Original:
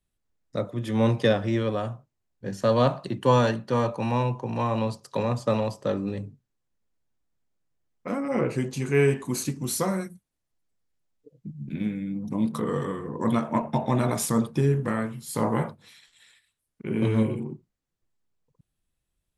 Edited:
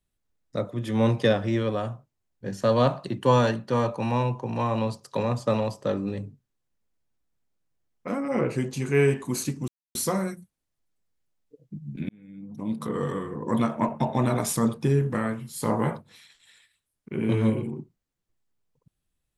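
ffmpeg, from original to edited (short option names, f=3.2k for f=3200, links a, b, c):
-filter_complex "[0:a]asplit=3[a][b][c];[a]atrim=end=9.68,asetpts=PTS-STARTPTS,afade=t=out:st=9.676:d=0.004:c=hsin,apad=pad_dur=0.27[d];[b]atrim=start=9.68:end=11.82,asetpts=PTS-STARTPTS,afade=t=in:d=0.004:c=hsin,afade=t=out:st=2.136:d=0.004:c=hsin[e];[c]atrim=start=11.82,asetpts=PTS-STARTPTS,afade=t=in:d=1.01[f];[d][e][f]concat=n=3:v=0:a=1"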